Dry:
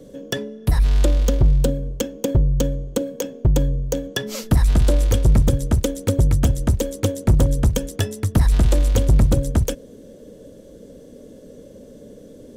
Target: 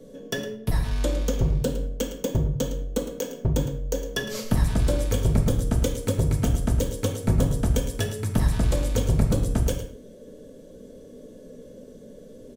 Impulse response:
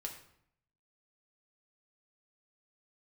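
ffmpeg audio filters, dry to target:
-filter_complex "[0:a]aecho=1:1:110:0.237[link_01];[1:a]atrim=start_sample=2205,afade=type=out:start_time=0.31:duration=0.01,atrim=end_sample=14112,asetrate=52920,aresample=44100[link_02];[link_01][link_02]afir=irnorm=-1:irlink=0"

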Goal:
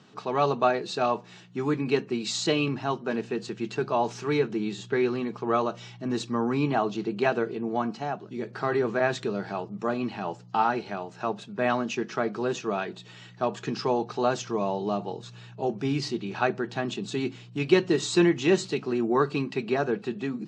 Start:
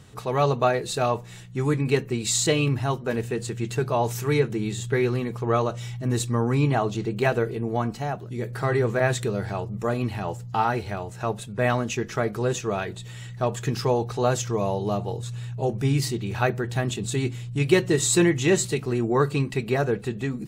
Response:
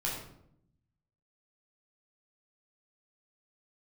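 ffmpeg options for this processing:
-af "highpass=frequency=180:width=0.5412,highpass=frequency=180:width=1.3066,equalizer=frequency=510:width_type=q:width=4:gain=-6,equalizer=frequency=2000:width_type=q:width=4:gain=-6,equalizer=frequency=3600:width_type=q:width=4:gain=-3,lowpass=frequency=5400:width=0.5412,lowpass=frequency=5400:width=1.3066"

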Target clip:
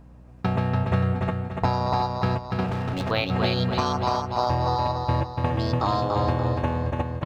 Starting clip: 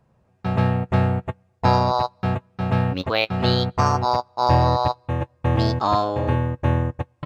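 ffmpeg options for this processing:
ffmpeg -i in.wav -filter_complex "[0:a]acompressor=threshold=-29dB:ratio=6,asplit=2[link_01][link_02];[link_02]aecho=0:1:289|578|867|1156|1445:0.631|0.271|0.117|0.0502|0.0216[link_03];[link_01][link_03]amix=inputs=2:normalize=0,aeval=exprs='val(0)+0.002*(sin(2*PI*60*n/s)+sin(2*PI*2*60*n/s)/2+sin(2*PI*3*60*n/s)/3+sin(2*PI*4*60*n/s)/4+sin(2*PI*5*60*n/s)/5)':channel_layout=same,asettb=1/sr,asplit=3[link_04][link_05][link_06];[link_04]atrim=end=2.664[link_07];[link_05]atrim=start=2.66:end=3.11,asetpts=PTS-STARTPTS,afade=type=in:duration=0.004:curve=qsin,afade=type=out:start_time=0.446:duration=0.004:curve=qsin,volume=31dB,asoftclip=hard,volume=-31dB[link_08];[link_06]atrim=start=3.106[link_09];[link_07][link_08]acrossfade=duration=0.004:curve1=hsin:curve2=qsin[link_10];[link_10][link_09]acrossfade=duration=0.004:curve1=qsin:curve2=hsin,volume=7dB" out.wav

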